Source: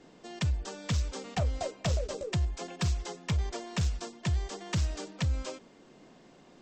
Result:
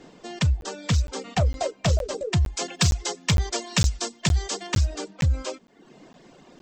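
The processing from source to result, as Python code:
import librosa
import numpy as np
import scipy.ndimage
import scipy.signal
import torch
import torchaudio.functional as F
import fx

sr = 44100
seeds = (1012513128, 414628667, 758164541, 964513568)

y = fx.dereverb_blind(x, sr, rt60_s=0.78)
y = fx.high_shelf(y, sr, hz=2500.0, db=9.5, at=(2.47, 4.67))
y = fx.buffer_crackle(y, sr, first_s=0.61, period_s=0.46, block=512, kind='zero')
y = y * librosa.db_to_amplitude(8.0)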